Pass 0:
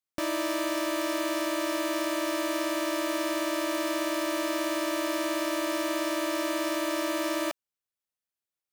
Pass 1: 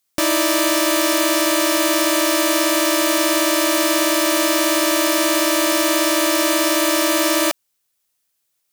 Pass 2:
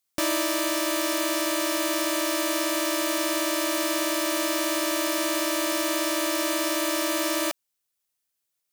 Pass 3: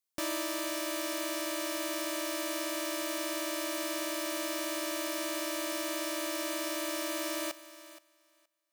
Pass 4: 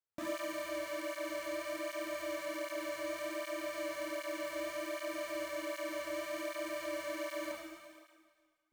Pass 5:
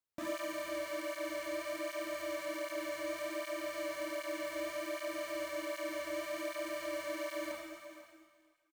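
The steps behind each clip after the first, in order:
treble shelf 3.4 kHz +9 dB; in parallel at -2.5 dB: peak limiter -23 dBFS, peak gain reduction 11 dB; on the sum: trim +8 dB
gain riding; trim -8.5 dB
thinning echo 472 ms, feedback 15%, high-pass 300 Hz, level -15.5 dB; trim -9 dB
median filter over 15 samples; Schroeder reverb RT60 1.4 s, combs from 28 ms, DRR -2.5 dB; cancelling through-zero flanger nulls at 1.3 Hz, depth 4.6 ms; trim -2 dB
delay 494 ms -15.5 dB

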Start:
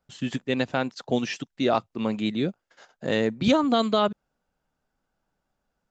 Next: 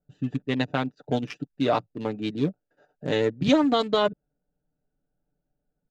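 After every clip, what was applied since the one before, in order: local Wiener filter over 41 samples; comb 6.8 ms, depth 57%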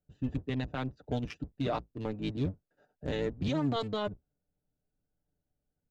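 octave divider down 1 oct, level -1 dB; peak limiter -16 dBFS, peak gain reduction 9.5 dB; trim -6.5 dB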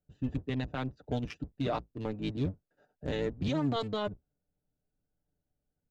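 no audible change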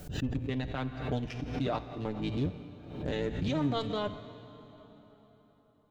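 feedback comb 58 Hz, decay 1.8 s, harmonics all, mix 60%; plate-style reverb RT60 4.5 s, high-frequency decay 0.75×, DRR 13 dB; swell ahead of each attack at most 68 dB/s; trim +7 dB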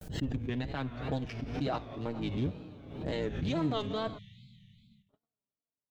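gate -54 dBFS, range -36 dB; spectral selection erased 4.18–5.09 s, 220–1900 Hz; wow and flutter 130 cents; trim -1 dB

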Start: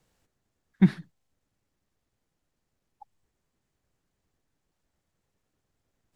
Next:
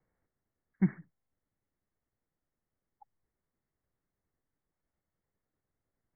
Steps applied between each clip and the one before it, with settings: Chebyshev low-pass 2.2 kHz, order 8; trim -7.5 dB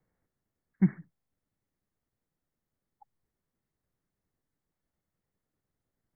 peaking EQ 170 Hz +3.5 dB 1.6 oct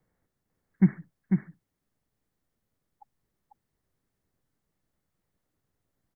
delay 496 ms -4.5 dB; trim +3.5 dB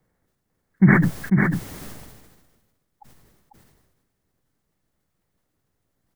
decay stretcher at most 40 dB/s; trim +5 dB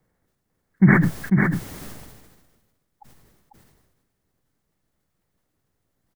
speakerphone echo 110 ms, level -23 dB

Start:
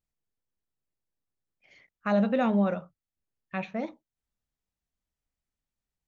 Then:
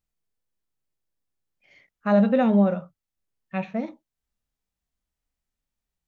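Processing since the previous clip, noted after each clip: harmonic-percussive split percussive -11 dB; trim +6 dB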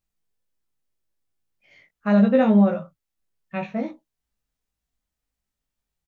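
doubling 19 ms -2.5 dB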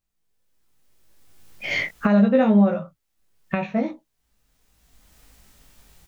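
recorder AGC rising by 20 dB/s

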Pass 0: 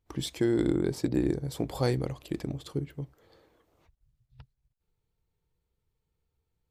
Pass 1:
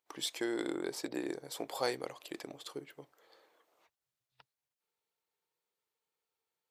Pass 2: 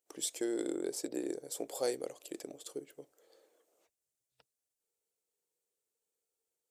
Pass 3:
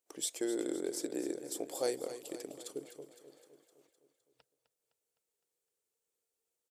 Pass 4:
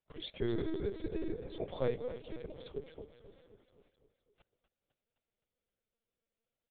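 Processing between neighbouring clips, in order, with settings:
high-pass 590 Hz 12 dB/octave
graphic EQ 125/500/1000/2000/4000/8000 Hz -7/+5/-11/-6/-6/+8 dB
feedback delay 256 ms, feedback 58%, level -12 dB
LPC vocoder at 8 kHz pitch kept; trim +1 dB

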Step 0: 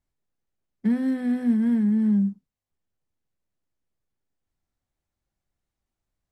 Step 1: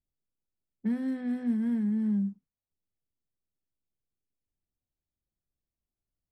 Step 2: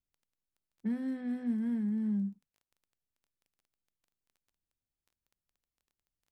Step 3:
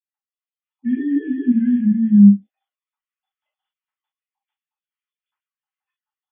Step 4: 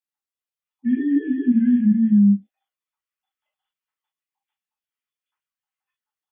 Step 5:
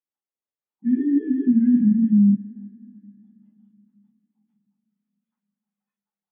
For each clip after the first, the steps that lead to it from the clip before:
level-controlled noise filter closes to 550 Hz, open at -19.5 dBFS; trim -7 dB
crackle 13 per s -51 dBFS; trim -4 dB
formants replaced by sine waves; level rider; reverberation, pre-delay 7 ms, DRR -8 dB
peak limiter -9.5 dBFS, peak gain reduction 7.5 dB
band-pass filter 320 Hz, Q 0.54; plate-style reverb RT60 3.6 s, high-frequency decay 0.95×, DRR 17.5 dB; AAC 32 kbps 48 kHz

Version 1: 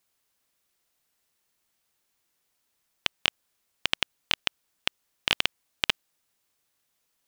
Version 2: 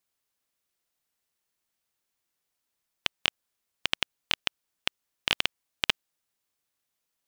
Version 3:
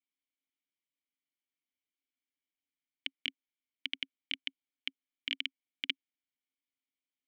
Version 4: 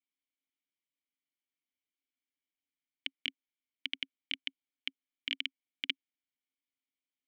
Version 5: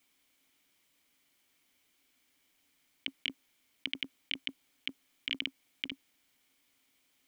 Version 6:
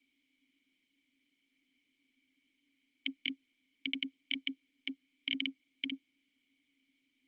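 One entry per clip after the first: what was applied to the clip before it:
upward expansion 1.5:1, over -35 dBFS
vowel filter i; bass shelf 190 Hz -9 dB; trim +2 dB
no audible change
compressor with a negative ratio -46 dBFS, ratio -1; trim +11 dB
vowel filter i; trim +9 dB; Opus 32 kbps 48 kHz

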